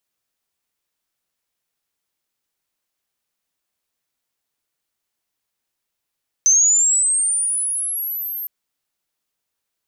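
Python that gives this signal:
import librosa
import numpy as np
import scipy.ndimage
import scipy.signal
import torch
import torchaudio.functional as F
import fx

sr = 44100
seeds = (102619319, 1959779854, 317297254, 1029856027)

y = fx.chirp(sr, length_s=2.01, from_hz=6100.0, to_hz=13000.0, law='linear', from_db=-10.0, to_db=-25.0)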